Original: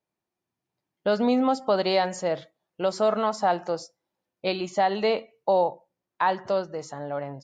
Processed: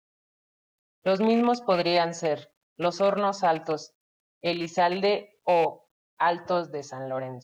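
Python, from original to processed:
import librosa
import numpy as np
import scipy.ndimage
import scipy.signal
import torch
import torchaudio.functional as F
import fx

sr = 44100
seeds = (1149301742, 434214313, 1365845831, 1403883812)

y = fx.rattle_buzz(x, sr, strikes_db=-33.0, level_db=-26.0)
y = fx.pitch_keep_formants(y, sr, semitones=-1.5)
y = fx.quant_dither(y, sr, seeds[0], bits=12, dither='none')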